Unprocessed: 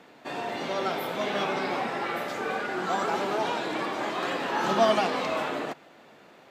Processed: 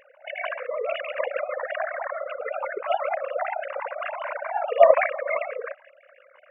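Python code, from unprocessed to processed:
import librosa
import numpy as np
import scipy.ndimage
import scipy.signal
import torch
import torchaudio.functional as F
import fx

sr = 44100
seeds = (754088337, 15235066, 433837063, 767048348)

y = fx.sine_speech(x, sr)
y = fx.formant_shift(y, sr, semitones=-3)
y = y * librosa.db_to_amplitude(4.5)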